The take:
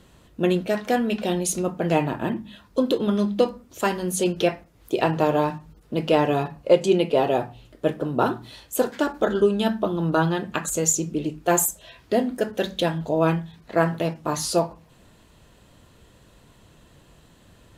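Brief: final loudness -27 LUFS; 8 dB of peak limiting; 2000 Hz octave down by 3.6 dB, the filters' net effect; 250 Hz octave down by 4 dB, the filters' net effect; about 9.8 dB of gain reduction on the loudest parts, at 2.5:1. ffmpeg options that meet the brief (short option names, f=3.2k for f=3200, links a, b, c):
-af "equalizer=f=250:t=o:g=-6,equalizer=f=2k:t=o:g=-5,acompressor=threshold=-28dB:ratio=2.5,volume=6.5dB,alimiter=limit=-15dB:level=0:latency=1"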